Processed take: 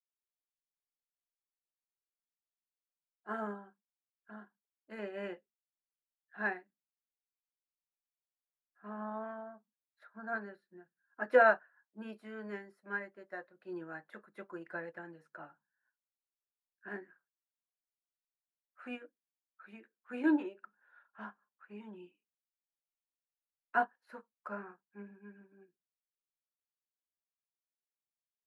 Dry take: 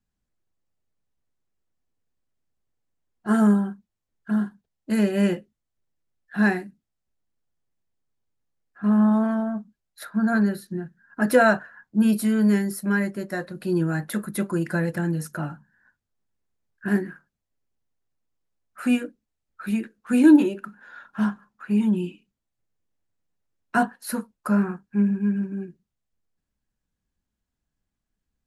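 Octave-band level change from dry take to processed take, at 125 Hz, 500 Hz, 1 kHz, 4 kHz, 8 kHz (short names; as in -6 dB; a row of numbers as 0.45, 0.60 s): -29.5 dB, -10.0 dB, -8.0 dB, under -15 dB, under -35 dB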